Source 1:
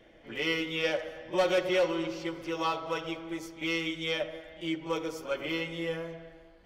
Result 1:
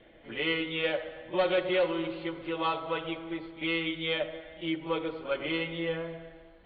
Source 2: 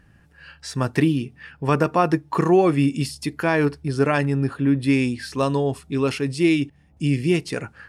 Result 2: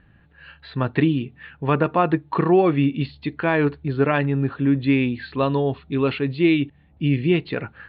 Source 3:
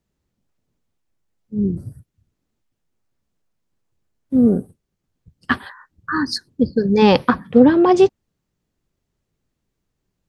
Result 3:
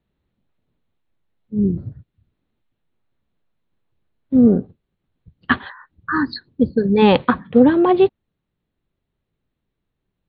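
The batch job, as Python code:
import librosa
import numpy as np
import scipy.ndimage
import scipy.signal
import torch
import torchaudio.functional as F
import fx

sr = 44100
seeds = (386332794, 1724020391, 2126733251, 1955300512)

p1 = scipy.signal.sosfilt(scipy.signal.butter(16, 4200.0, 'lowpass', fs=sr, output='sos'), x)
p2 = fx.rider(p1, sr, range_db=3, speed_s=2.0)
p3 = p1 + (p2 * 10.0 ** (2.0 / 20.0))
y = p3 * 10.0 ** (-7.0 / 20.0)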